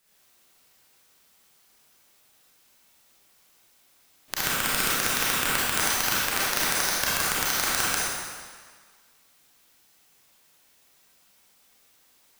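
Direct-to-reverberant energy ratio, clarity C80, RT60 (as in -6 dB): -9.0 dB, -2.0 dB, 1.6 s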